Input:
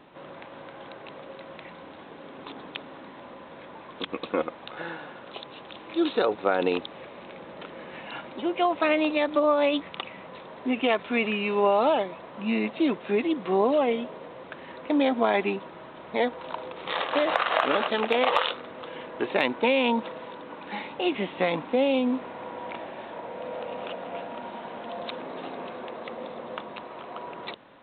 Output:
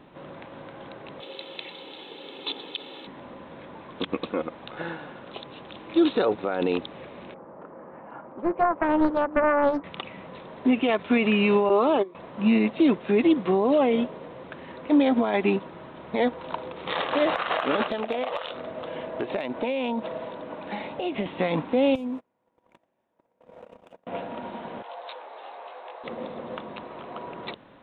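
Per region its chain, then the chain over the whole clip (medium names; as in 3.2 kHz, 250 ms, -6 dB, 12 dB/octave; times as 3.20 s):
1.20–3.07 s: high-pass 250 Hz + resonant high shelf 2.4 kHz +12.5 dB, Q 1.5 + comb 2.3 ms, depth 42%
7.34–9.84 s: low-pass 1.2 kHz 24 dB/octave + tilt EQ +3 dB/octave + loudspeaker Doppler distortion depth 0.42 ms
11.69–12.15 s: high-pass 120 Hz + gate -25 dBFS, range -18 dB + small resonant body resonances 380/1100 Hz, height 15 dB
17.91–21.26 s: peaking EQ 640 Hz +9.5 dB 0.36 oct + compression 5:1, threshold -30 dBFS
21.95–24.07 s: median filter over 9 samples + gate -33 dBFS, range -38 dB + compression 10:1, threshold -33 dBFS
24.82–26.04 s: high-pass 540 Hz 24 dB/octave + peaking EQ 840 Hz +6 dB 0.25 oct + detune thickener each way 29 cents
whole clip: bass shelf 290 Hz +8.5 dB; peak limiter -18 dBFS; upward expansion 1.5:1, over -36 dBFS; trim +6 dB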